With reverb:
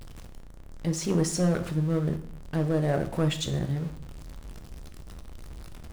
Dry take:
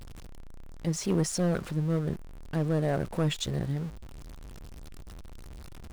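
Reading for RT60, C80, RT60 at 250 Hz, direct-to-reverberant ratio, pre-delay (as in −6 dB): 0.55 s, 16.0 dB, 0.70 s, 7.5 dB, 10 ms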